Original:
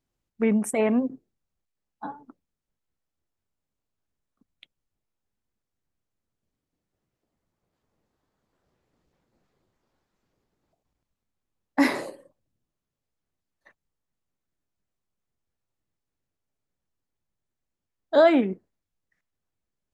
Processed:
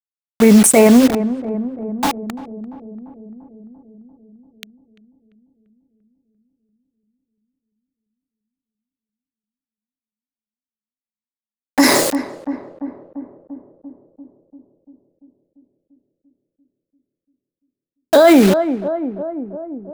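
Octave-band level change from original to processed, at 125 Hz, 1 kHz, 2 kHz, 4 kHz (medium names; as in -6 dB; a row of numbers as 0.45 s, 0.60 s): +15.0 dB, +10.5 dB, +10.0 dB, +16.5 dB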